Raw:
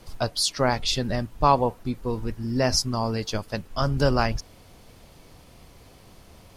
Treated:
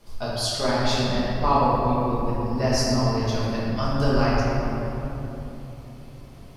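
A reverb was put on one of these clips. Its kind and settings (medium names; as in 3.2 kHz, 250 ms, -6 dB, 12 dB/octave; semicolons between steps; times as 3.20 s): simulated room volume 200 m³, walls hard, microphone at 1.3 m; trim -8 dB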